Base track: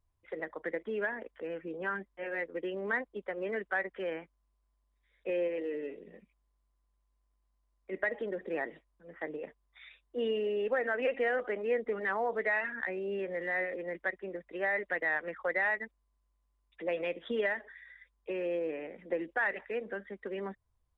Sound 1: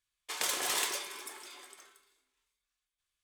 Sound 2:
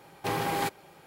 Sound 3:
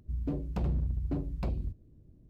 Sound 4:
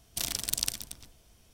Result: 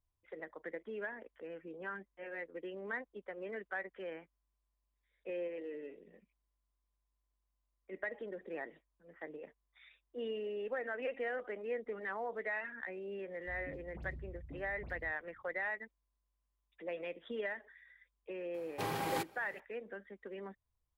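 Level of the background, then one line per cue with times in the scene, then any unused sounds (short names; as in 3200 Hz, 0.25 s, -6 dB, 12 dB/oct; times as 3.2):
base track -8 dB
13.39 add 3 -17 dB + dispersion highs, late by 84 ms, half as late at 2000 Hz
18.54 add 2 -7.5 dB
not used: 1, 4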